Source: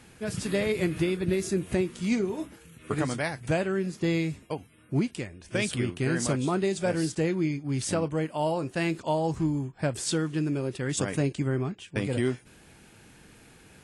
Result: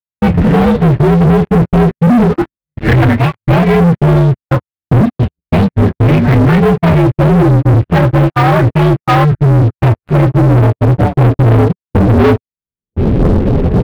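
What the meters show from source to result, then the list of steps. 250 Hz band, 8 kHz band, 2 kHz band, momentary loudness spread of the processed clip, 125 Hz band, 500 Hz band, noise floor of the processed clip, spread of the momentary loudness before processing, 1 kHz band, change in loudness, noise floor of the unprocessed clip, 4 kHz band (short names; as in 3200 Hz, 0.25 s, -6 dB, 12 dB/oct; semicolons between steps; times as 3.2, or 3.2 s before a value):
+18.0 dB, n/a, +14.0 dB, 5 LU, +23.5 dB, +15.5 dB, under -85 dBFS, 6 LU, +21.0 dB, +18.5 dB, -55 dBFS, +9.5 dB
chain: inharmonic rescaling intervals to 123%; recorder AGC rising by 38 dB/s; on a send: early reflections 24 ms -13.5 dB, 42 ms -16 dB; on the sum: gate -29 dBFS, range -60 dB; in parallel at -10 dB: soft clip -25 dBFS, distortion -14 dB; on the sum: tone controls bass +11 dB, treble -8 dB; low-pass sweep 1800 Hz -> 450 Hz, 9.75–11.9; spectral delete 9.25–9.66, 320–1200 Hz; sample leveller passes 5; bell 6800 Hz -7 dB 1.1 oct; gain +2.5 dB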